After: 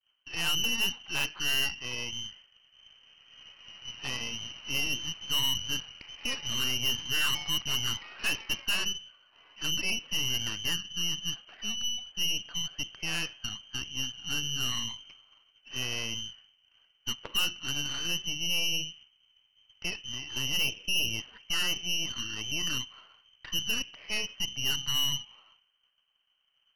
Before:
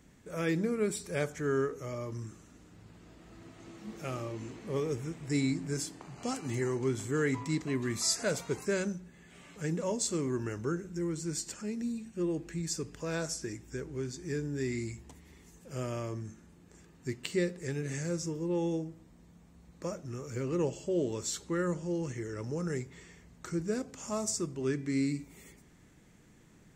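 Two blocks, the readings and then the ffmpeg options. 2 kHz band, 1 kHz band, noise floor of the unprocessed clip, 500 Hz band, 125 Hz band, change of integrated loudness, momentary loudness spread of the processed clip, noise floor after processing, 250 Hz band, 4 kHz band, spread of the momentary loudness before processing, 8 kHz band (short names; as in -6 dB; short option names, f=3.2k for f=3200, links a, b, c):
+9.0 dB, -0.5 dB, -59 dBFS, -15.5 dB, -7.5 dB, +4.0 dB, 10 LU, -71 dBFS, -11.5 dB, +18.0 dB, 11 LU, +4.0 dB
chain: -af "lowpass=f=2.7k:t=q:w=0.5098,lowpass=f=2.7k:t=q:w=0.6013,lowpass=f=2.7k:t=q:w=0.9,lowpass=f=2.7k:t=q:w=2.563,afreqshift=-3200,aeval=exprs='0.119*(cos(1*acos(clip(val(0)/0.119,-1,1)))-cos(1*PI/2))+0.00075*(cos(5*acos(clip(val(0)/0.119,-1,1)))-cos(5*PI/2))+0.0211*(cos(8*acos(clip(val(0)/0.119,-1,1)))-cos(8*PI/2))':c=same,agate=range=-33dB:threshold=-49dB:ratio=3:detection=peak"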